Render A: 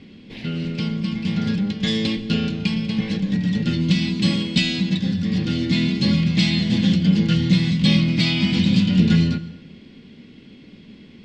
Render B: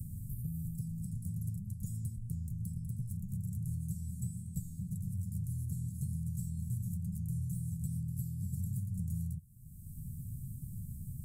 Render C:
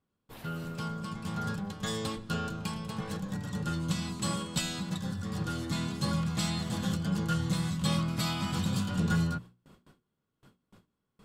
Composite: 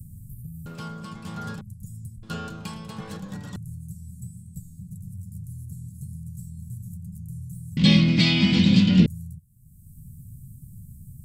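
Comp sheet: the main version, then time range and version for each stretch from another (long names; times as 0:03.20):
B
0:00.66–0:01.61: punch in from C
0:02.23–0:03.56: punch in from C
0:07.77–0:09.06: punch in from A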